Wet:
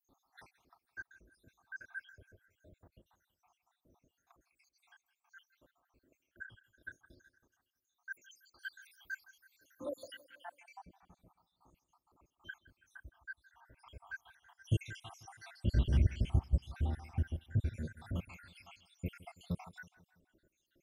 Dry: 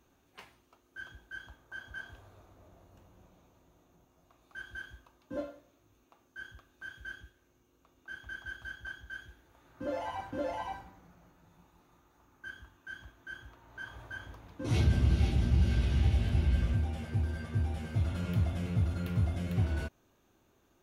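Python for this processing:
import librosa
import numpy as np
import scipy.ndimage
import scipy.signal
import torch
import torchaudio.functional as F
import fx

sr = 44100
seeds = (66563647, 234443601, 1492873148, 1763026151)

y = fx.spec_dropout(x, sr, seeds[0], share_pct=84)
y = fx.tilt_eq(y, sr, slope=4.0, at=(8.1, 10.25))
y = fx.echo_feedback(y, sr, ms=164, feedback_pct=53, wet_db=-19.5)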